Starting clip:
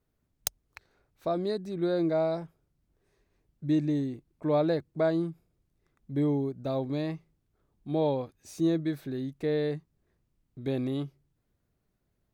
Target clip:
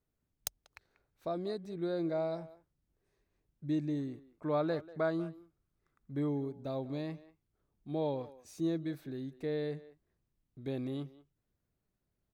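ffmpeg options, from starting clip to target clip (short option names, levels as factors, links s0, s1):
-filter_complex "[0:a]asettb=1/sr,asplit=3[s0][s1][s2];[s0]atrim=end=3.984[s3];[s1]atrim=start=3.98:end=6.29,asetpts=PTS-STARTPTS,afade=t=in:d=0.004:c=qsin,afade=t=out:st=2.306:d=0.004:c=qsin,equalizer=f=1300:t=o:w=0.65:g=8.5[s4];[s2]atrim=start=6.286[s5];[s3][s4]acrossfade=d=0.004:c1=hsin:c2=qsin[s6];[s6][s5]acrossfade=d=0.004:c1=qsin:c2=hsin,asplit=2[s7][s8];[s8]adelay=190,highpass=300,lowpass=3400,asoftclip=type=hard:threshold=0.1,volume=0.141[s9];[s7][s9]amix=inputs=2:normalize=0,volume=0.447"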